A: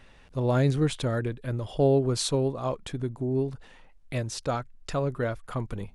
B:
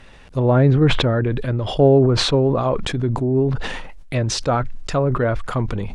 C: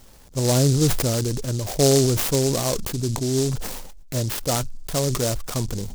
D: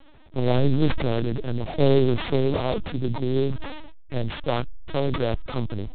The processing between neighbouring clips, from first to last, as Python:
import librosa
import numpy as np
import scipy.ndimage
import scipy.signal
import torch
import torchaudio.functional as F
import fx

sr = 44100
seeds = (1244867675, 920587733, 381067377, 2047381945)

y1 = fx.env_lowpass_down(x, sr, base_hz=1700.0, full_db=-23.0)
y1 = fx.sustainer(y1, sr, db_per_s=35.0)
y1 = y1 * 10.0 ** (8.5 / 20.0)
y2 = fx.noise_mod_delay(y1, sr, seeds[0], noise_hz=5900.0, depth_ms=0.16)
y2 = y2 * 10.0 ** (-4.0 / 20.0)
y3 = fx.lpc_vocoder(y2, sr, seeds[1], excitation='pitch_kept', order=10)